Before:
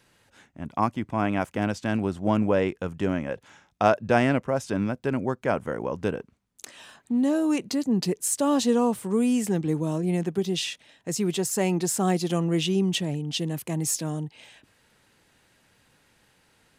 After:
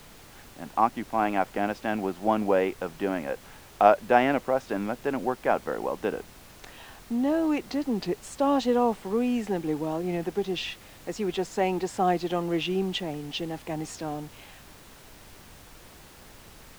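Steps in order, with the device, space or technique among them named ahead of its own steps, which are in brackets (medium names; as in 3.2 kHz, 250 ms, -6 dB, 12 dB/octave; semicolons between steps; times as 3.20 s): horn gramophone (band-pass 270–3300 Hz; peaking EQ 780 Hz +7.5 dB 0.25 oct; wow and flutter; pink noise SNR 21 dB)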